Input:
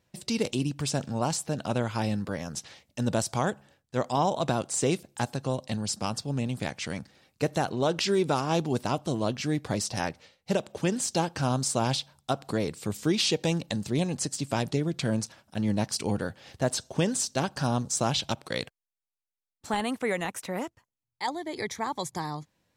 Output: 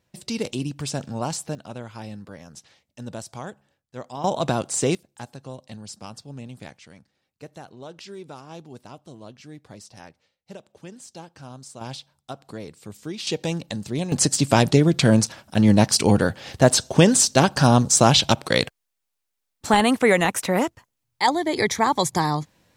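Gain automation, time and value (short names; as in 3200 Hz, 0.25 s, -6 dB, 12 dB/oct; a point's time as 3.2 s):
+0.5 dB
from 1.55 s -8 dB
from 4.24 s +4 dB
from 4.95 s -8 dB
from 6.77 s -14 dB
from 11.81 s -7.5 dB
from 13.27 s +0.5 dB
from 14.12 s +11.5 dB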